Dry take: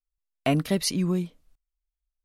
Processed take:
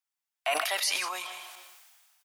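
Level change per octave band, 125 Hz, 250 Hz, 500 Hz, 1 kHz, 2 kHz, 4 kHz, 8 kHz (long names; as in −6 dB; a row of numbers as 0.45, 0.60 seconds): below −40 dB, −28.5 dB, −6.0 dB, +3.0 dB, +7.0 dB, +2.5 dB, +0.5 dB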